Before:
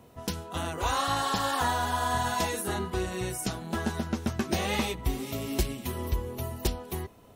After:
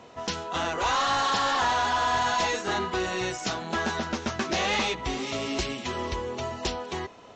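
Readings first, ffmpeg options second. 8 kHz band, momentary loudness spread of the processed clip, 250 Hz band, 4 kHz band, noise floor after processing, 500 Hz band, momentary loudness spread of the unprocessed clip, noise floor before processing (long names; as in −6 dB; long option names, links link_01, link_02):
+0.5 dB, 8 LU, −0.5 dB, +5.5 dB, −48 dBFS, +3.0 dB, 7 LU, −54 dBFS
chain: -filter_complex "[0:a]asplit=2[link_01][link_02];[link_02]highpass=frequency=720:poles=1,volume=19dB,asoftclip=type=tanh:threshold=-15dB[link_03];[link_01][link_03]amix=inputs=2:normalize=0,lowpass=frequency=5800:poles=1,volume=-6dB,volume=-2.5dB" -ar 16000 -c:a pcm_mulaw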